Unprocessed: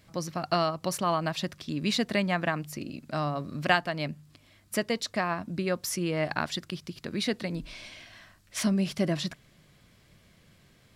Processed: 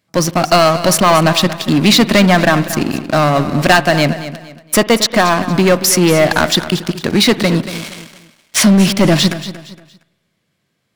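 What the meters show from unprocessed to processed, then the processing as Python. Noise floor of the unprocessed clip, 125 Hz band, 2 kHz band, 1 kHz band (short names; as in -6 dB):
-61 dBFS, +18.0 dB, +16.5 dB, +17.0 dB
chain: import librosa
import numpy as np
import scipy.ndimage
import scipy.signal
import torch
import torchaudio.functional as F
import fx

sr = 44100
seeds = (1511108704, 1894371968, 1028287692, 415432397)

p1 = scipy.signal.sosfilt(scipy.signal.butter(2, 130.0, 'highpass', fs=sr, output='sos'), x)
p2 = fx.leveller(p1, sr, passes=5)
p3 = p2 + fx.echo_feedback(p2, sr, ms=232, feedback_pct=33, wet_db=-13.5, dry=0)
p4 = fx.rev_spring(p3, sr, rt60_s=1.1, pass_ms=(49,), chirp_ms=50, drr_db=18.0)
y = p4 * librosa.db_to_amplitude(3.0)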